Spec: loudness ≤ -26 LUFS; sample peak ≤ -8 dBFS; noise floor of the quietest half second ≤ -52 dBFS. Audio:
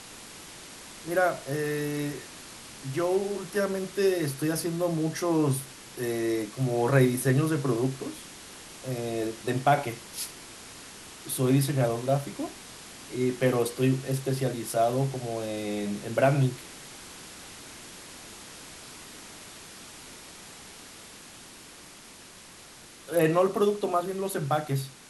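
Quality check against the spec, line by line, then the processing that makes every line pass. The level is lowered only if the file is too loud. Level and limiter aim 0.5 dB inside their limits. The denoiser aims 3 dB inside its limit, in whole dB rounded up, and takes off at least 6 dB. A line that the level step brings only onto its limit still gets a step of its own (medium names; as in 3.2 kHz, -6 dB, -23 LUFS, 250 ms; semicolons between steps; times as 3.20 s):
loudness -28.0 LUFS: pass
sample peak -8.5 dBFS: pass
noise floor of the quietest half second -49 dBFS: fail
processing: noise reduction 6 dB, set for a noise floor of -49 dBFS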